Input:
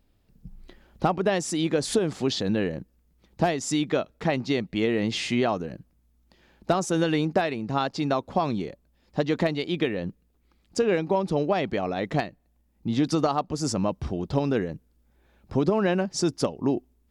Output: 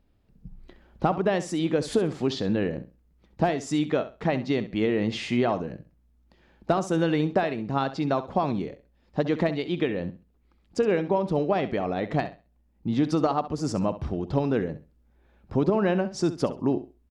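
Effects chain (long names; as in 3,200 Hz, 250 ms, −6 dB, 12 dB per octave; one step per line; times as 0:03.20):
high-shelf EQ 3,900 Hz −10.5 dB
on a send: repeating echo 66 ms, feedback 22%, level −13.5 dB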